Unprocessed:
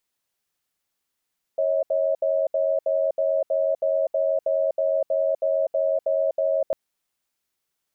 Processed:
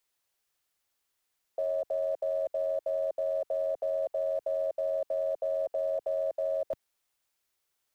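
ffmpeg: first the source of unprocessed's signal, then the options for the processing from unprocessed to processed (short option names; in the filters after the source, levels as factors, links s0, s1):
-f lavfi -i "aevalsrc='0.0794*(sin(2*PI*549*t)+sin(2*PI*637*t))*clip(min(mod(t,0.32),0.25-mod(t,0.32))/0.005,0,1)':d=5.15:s=44100"
-filter_complex "[0:a]acrossover=split=150|260|340[s0][s1][s2][s3];[s1]acrusher=bits=5:dc=4:mix=0:aa=0.000001[s4];[s0][s4][s2][s3]amix=inputs=4:normalize=0,alimiter=level_in=1.06:limit=0.0631:level=0:latency=1:release=15,volume=0.944"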